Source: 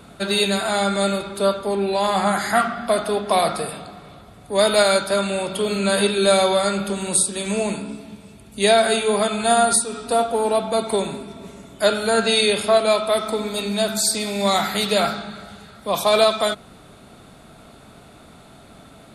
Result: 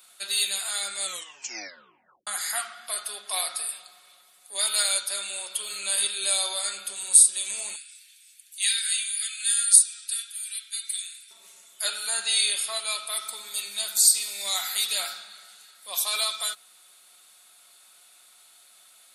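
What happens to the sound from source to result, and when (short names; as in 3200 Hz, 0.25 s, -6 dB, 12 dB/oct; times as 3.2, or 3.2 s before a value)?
1.02 tape stop 1.25 s
7.76–11.31 steep high-pass 1500 Hz 72 dB/oct
11.86–16.04 feedback echo 83 ms, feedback 40%, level -19.5 dB
whole clip: HPF 770 Hz 6 dB/oct; differentiator; comb 5.5 ms, depth 42%; gain +2 dB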